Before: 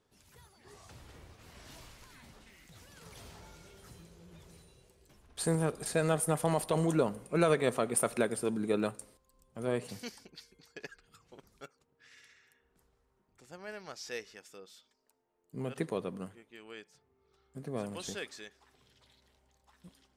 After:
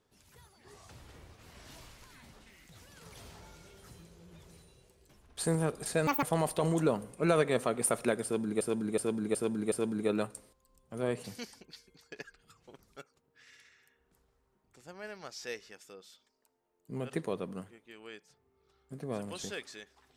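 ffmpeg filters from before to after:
-filter_complex "[0:a]asplit=7[a][b][c][d][e][f][g];[a]atrim=end=6.074[h];[b]atrim=start=6.07:end=6.35,asetpts=PTS-STARTPTS,asetrate=78939,aresample=44100,atrim=end_sample=6898,asetpts=PTS-STARTPTS[i];[c]atrim=start=6.346:end=8.732[j];[d]atrim=start=8.358:end=8.732[k];[e]atrim=start=8.358:end=8.732[l];[f]atrim=start=8.358:end=8.732[m];[g]atrim=start=8.358[n];[h][i]acrossfade=d=0.004:c1=hsin:c2=hsin[o];[o][j]acrossfade=d=0.004:c1=hsin:c2=hsin[p];[p][k]acrossfade=d=0.004:c1=hsin:c2=hsin[q];[q][l]acrossfade=d=0.004:c1=hsin:c2=hsin[r];[r][m]acrossfade=d=0.004:c1=hsin:c2=hsin[s];[s][n]acrossfade=d=0.004:c1=hsin:c2=hsin"

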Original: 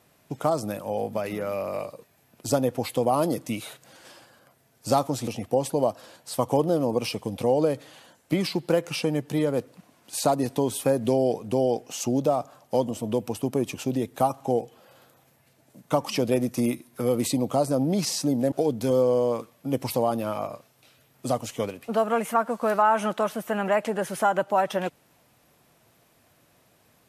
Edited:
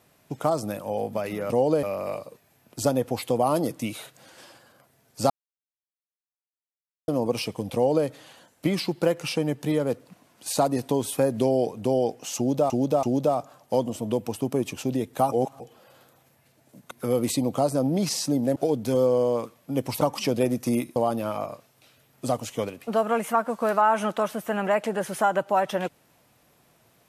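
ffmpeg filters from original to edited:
-filter_complex "[0:a]asplit=12[a][b][c][d][e][f][g][h][i][j][k][l];[a]atrim=end=1.502[m];[b]atrim=start=7.408:end=7.742[n];[c]atrim=start=1.498:end=4.97,asetpts=PTS-STARTPTS,afade=t=out:st=3.468:d=0.004:c=hsin[o];[d]atrim=start=4.97:end=6.75,asetpts=PTS-STARTPTS,volume=0[p];[e]atrim=start=6.75:end=12.372,asetpts=PTS-STARTPTS,afade=t=in:d=0.004:c=hsin[q];[f]atrim=start=12.038:end=12.372[r];[g]atrim=start=12.038:end=14.332[s];[h]atrim=start=14.328:end=14.612,asetpts=PTS-STARTPTS,areverse[t];[i]atrim=start=14.608:end=15.922[u];[j]atrim=start=16.868:end=19.972[v];[k]atrim=start=15.918:end=16.872[w];[l]atrim=start=19.968[x];[m][n]acrossfade=d=0.004:c1=hsin:c2=hsin[y];[o][p][q]concat=n=3:v=0:a=1[z];[y][z]acrossfade=d=0.004:c1=hsin:c2=hsin[aa];[aa][r]acrossfade=d=0.004:c1=hsin:c2=hsin[ab];[ab][s]acrossfade=d=0.004:c1=hsin:c2=hsin[ac];[ac][t]acrossfade=d=0.004:c1=hsin:c2=hsin[ad];[ad][u]acrossfade=d=0.004:c1=hsin:c2=hsin[ae];[ae][v]acrossfade=d=0.004:c1=hsin:c2=hsin[af];[af][w]acrossfade=d=0.004:c1=hsin:c2=hsin[ag];[ag][x]acrossfade=d=0.004:c1=hsin:c2=hsin"

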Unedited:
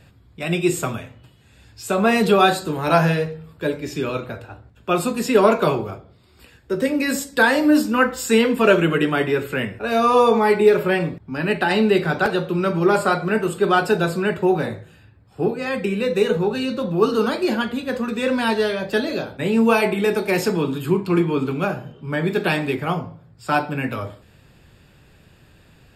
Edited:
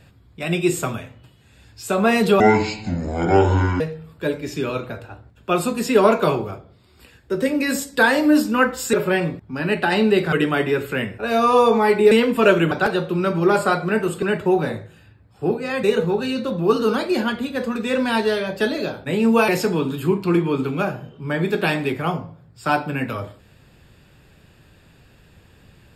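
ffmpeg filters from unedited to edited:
-filter_complex "[0:a]asplit=10[a][b][c][d][e][f][g][h][i][j];[a]atrim=end=2.404[k];[b]atrim=start=2.4:end=3.2,asetpts=PTS-STARTPTS,asetrate=25137,aresample=44100[l];[c]atrim=start=3.196:end=8.332[m];[d]atrim=start=10.718:end=12.112[n];[e]atrim=start=8.928:end=10.722[o];[f]atrim=start=8.328:end=8.932[p];[g]atrim=start=12.108:end=13.622[q];[h]atrim=start=14.188:end=15.802[r];[i]atrim=start=16.158:end=19.812[s];[j]atrim=start=20.308[t];[k][l]acrossfade=d=0.004:c1=hsin:c2=hsin[u];[u][m]acrossfade=d=0.004:c1=hsin:c2=hsin[v];[v][n]acrossfade=d=0.004:c1=hsin:c2=hsin[w];[w][o]acrossfade=d=0.004:c1=hsin:c2=hsin[x];[x][p]acrossfade=d=0.004:c1=hsin:c2=hsin[y];[y][q]acrossfade=d=0.004:c1=hsin:c2=hsin[z];[z][r]acrossfade=d=0.004:c1=hsin:c2=hsin[aa];[aa][s]acrossfade=d=0.004:c1=hsin:c2=hsin[ab];[ab][t]acrossfade=d=0.004:c1=hsin:c2=hsin"

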